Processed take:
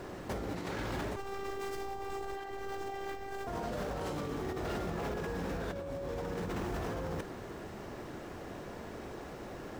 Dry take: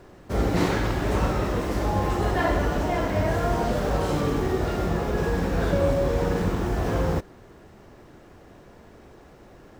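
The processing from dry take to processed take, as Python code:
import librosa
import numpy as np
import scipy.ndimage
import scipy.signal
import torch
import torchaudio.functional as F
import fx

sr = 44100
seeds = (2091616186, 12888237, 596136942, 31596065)

y = fx.low_shelf(x, sr, hz=100.0, db=-7.0)
y = fx.over_compress(y, sr, threshold_db=-34.0, ratio=-1.0)
y = 10.0 ** (-27.5 / 20.0) * (np.abs((y / 10.0 ** (-27.5 / 20.0) + 3.0) % 4.0 - 2.0) - 1.0)
y = fx.robotise(y, sr, hz=392.0, at=(1.16, 3.47))
y = F.gain(torch.from_numpy(y), -2.5).numpy()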